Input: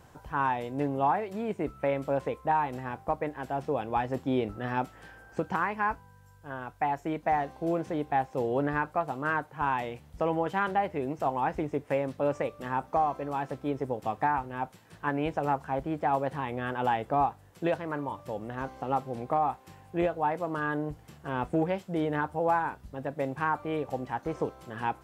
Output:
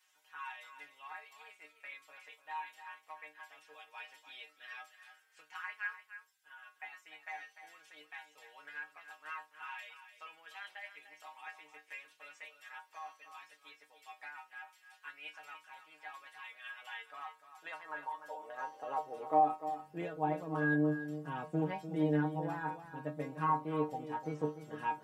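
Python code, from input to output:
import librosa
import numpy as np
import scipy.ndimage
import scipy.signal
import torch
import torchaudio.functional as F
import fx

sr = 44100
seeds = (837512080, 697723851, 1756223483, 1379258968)

y = fx.stiff_resonator(x, sr, f0_hz=150.0, decay_s=0.24, stiffness=0.002)
y = fx.filter_sweep_highpass(y, sr, from_hz=2200.0, to_hz=180.0, start_s=16.89, end_s=20.2, q=1.4)
y = y + 10.0 ** (-11.5 / 20.0) * np.pad(y, (int(297 * sr / 1000.0), 0))[:len(y)]
y = F.gain(torch.from_numpy(y), 2.5).numpy()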